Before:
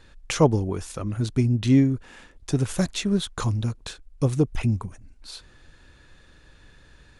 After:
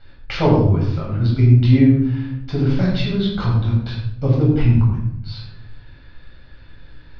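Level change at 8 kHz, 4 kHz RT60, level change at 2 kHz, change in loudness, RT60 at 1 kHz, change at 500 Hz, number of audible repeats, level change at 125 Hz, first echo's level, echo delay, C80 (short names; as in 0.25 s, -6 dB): under -15 dB, 0.50 s, +5.0 dB, +7.0 dB, 0.65 s, +4.0 dB, none, +9.5 dB, none, none, 4.0 dB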